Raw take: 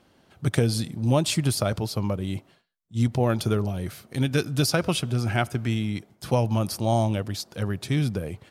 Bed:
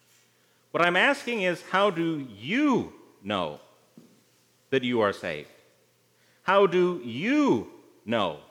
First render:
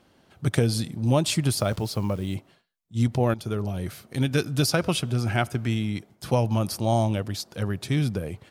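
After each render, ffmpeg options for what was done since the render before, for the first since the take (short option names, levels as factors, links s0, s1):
-filter_complex "[0:a]asettb=1/sr,asplit=3[s0][s1][s2];[s0]atrim=end=1.574[s3];[s1]atrim=start=1.57:end=2.35,asetpts=PTS-STARTPTS,afade=t=in:d=0.004:c=qsin,afade=t=out:st=0.776:d=0.004:c=qsin,acrusher=bits=9:dc=4:mix=0:aa=0.000001[s4];[s2]atrim=start=2.346[s5];[s3][s4]acrossfade=d=0.004:c1=hsin:c2=qsin[s6];[s6][s5]acrossfade=d=0.004:c1=qsin:c2=hsin,asplit=2[s7][s8];[s7]atrim=end=3.34,asetpts=PTS-STARTPTS,afade=t=out:st=3.336:d=0.004:c=hsin:silence=0.223872[s9];[s8]atrim=start=3.34,asetpts=PTS-STARTPTS,afade=t=in:d=0.42:silence=0.223872[s10];[s9][s10]concat=n=2:v=0:a=1"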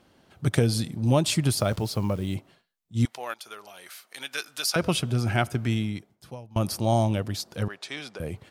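-filter_complex "[0:a]asettb=1/sr,asplit=3[s0][s1][s2];[s0]atrim=end=3.054[s3];[s1]atrim=start=3.05:end=4.76,asetpts=PTS-STARTPTS,afade=t=in:d=0.004:c=qsin,afade=t=out:st=1.706:d=0.004:c=qsin,highpass=1100[s4];[s2]atrim=start=4.756[s5];[s3][s4]acrossfade=d=0.004:c1=hsin:c2=qsin[s6];[s6][s5]acrossfade=d=0.004:c1=qsin:c2=hsin,asettb=1/sr,asplit=3[s7][s8][s9];[s7]atrim=end=7.684[s10];[s8]atrim=start=7.68:end=8.2,asetpts=PTS-STARTPTS,afade=t=in:d=0.004:c=qsin,afade=t=out:st=0.516:d=0.004:c=qsin,highpass=680,lowpass=6800[s11];[s9]atrim=start=8.196[s12];[s10][s11]acrossfade=d=0.004:c1=hsin:c2=qsin[s13];[s13][s12]acrossfade=d=0.004:c1=qsin:c2=hsin,asplit=2[s14][s15];[s14]atrim=end=6.56,asetpts=PTS-STARTPTS,afade=t=out:st=5.8:d=0.76:c=qua:silence=0.0630957[s16];[s15]atrim=start=6.56,asetpts=PTS-STARTPTS,afade=t=in:d=0.004:c=hsin:silence=0.0630957[s17];[s16][s17]concat=n=2:v=0:a=1"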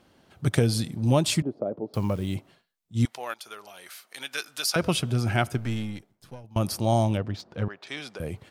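-filter_complex "[0:a]asettb=1/sr,asplit=3[s0][s1][s2];[s0]atrim=end=1.424[s3];[s1]atrim=start=1.42:end=1.94,asetpts=PTS-STARTPTS,afade=t=in:d=0.004:c=qsin,afade=t=out:st=0.516:d=0.004:c=qsin,asuperpass=centerf=390:order=4:qfactor=1[s4];[s2]atrim=start=1.936[s5];[s3][s4]acrossfade=d=0.004:c1=hsin:c2=qsin[s6];[s6][s5]acrossfade=d=0.004:c1=qsin:c2=hsin,asettb=1/sr,asplit=3[s7][s8][s9];[s7]atrim=end=5.574[s10];[s8]atrim=start=5.57:end=6.44,asetpts=PTS-STARTPTS,afade=t=in:d=0.004:c=qsin,afade=t=out:st=0.866:d=0.004:c=qsin,aeval=exprs='if(lt(val(0),0),0.447*val(0),val(0))':c=same[s11];[s9]atrim=start=6.436[s12];[s10][s11]acrossfade=d=0.004:c1=hsin:c2=qsin[s13];[s13][s12]acrossfade=d=0.004:c1=qsin:c2=hsin,asettb=1/sr,asplit=3[s14][s15][s16];[s14]atrim=end=7.174[s17];[s15]atrim=start=7.17:end=7.87,asetpts=PTS-STARTPTS,afade=t=in:d=0.004:c=qsin,afade=t=out:st=0.696:d=0.004:c=qsin,adynamicsmooth=sensitivity=1.5:basefreq=2500[s18];[s16]atrim=start=7.866[s19];[s17][s18]acrossfade=d=0.004:c1=hsin:c2=qsin[s20];[s20][s19]acrossfade=d=0.004:c1=qsin:c2=hsin"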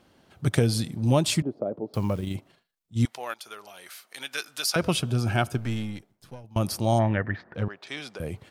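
-filter_complex "[0:a]asettb=1/sr,asplit=3[s0][s1][s2];[s0]atrim=end=2.204[s3];[s1]atrim=start=2.2:end=2.97,asetpts=PTS-STARTPTS,afade=t=in:d=0.004:c=qsin,afade=t=out:st=0.766:d=0.004:c=qsin,tremolo=f=26:d=0.4[s4];[s2]atrim=start=2.966[s5];[s3][s4]acrossfade=d=0.004:c1=hsin:c2=qsin[s6];[s6][s5]acrossfade=d=0.004:c1=qsin:c2=hsin,asettb=1/sr,asplit=3[s7][s8][s9];[s7]atrim=end=5.004[s10];[s8]atrim=start=5:end=5.61,asetpts=PTS-STARTPTS,afade=t=in:d=0.004:c=qsin,afade=t=out:st=0.606:d=0.004:c=qsin,bandreject=f=2000:w=6.4[s11];[s9]atrim=start=5.606[s12];[s10][s11]acrossfade=d=0.004:c1=hsin:c2=qsin[s13];[s13][s12]acrossfade=d=0.004:c1=qsin:c2=hsin,asplit=3[s14][s15][s16];[s14]afade=t=out:st=6.98:d=0.02[s17];[s15]lowpass=f=1800:t=q:w=9,afade=t=in:st=6.98:d=0.02,afade=t=out:st=7.54:d=0.02[s18];[s16]afade=t=in:st=7.54:d=0.02[s19];[s17][s18][s19]amix=inputs=3:normalize=0"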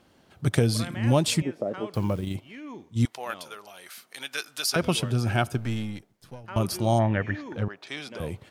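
-filter_complex "[1:a]volume=0.133[s0];[0:a][s0]amix=inputs=2:normalize=0"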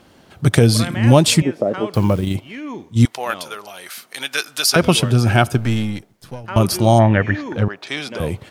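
-af "volume=3.35,alimiter=limit=0.891:level=0:latency=1"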